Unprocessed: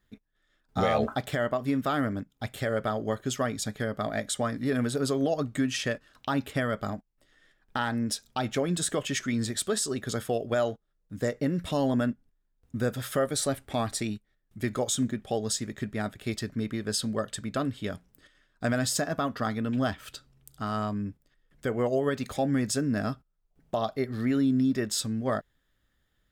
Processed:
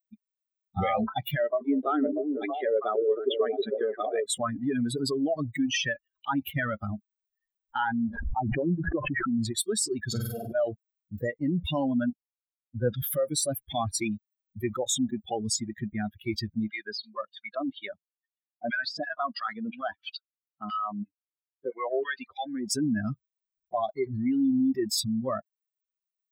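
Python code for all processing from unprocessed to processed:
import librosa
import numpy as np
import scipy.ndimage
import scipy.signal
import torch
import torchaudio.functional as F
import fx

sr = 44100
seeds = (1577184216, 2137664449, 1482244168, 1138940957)

y = fx.chain(x, sr, fx.brickwall_bandpass(low_hz=210.0, high_hz=4000.0),
    fx.peak_eq(hz=430.0, db=11.5, octaves=0.44),
    fx.echo_stepped(ms=319, hz=380.0, octaves=0.7, feedback_pct=70, wet_db=-1.5), at=(1.39, 4.24))
y = fx.chain(y, sr, fx.lowpass(hz=1200.0, slope=24),
    fx.pre_swell(db_per_s=37.0), at=(8.08, 9.38))
y = fx.chain(y, sr, fx.auto_swell(attack_ms=184.0),
    fx.room_flutter(wall_m=8.3, rt60_s=1.1), at=(10.07, 10.55))
y = fx.chain(y, sr, fx.lowpass(hz=5900.0, slope=24),
    fx.band_widen(depth_pct=100), at=(12.1, 13.02))
y = fx.chain(y, sr, fx.filter_lfo_bandpass(shape='saw_down', hz=3.0, low_hz=350.0, high_hz=2900.0, q=0.8),
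    fx.peak_eq(hz=4300.0, db=6.5, octaves=1.1), at=(16.7, 22.71))
y = fx.bin_expand(y, sr, power=3.0)
y = fx.peak_eq(y, sr, hz=350.0, db=6.0, octaves=1.9)
y = fx.env_flatten(y, sr, amount_pct=70)
y = y * 10.0 ** (-6.0 / 20.0)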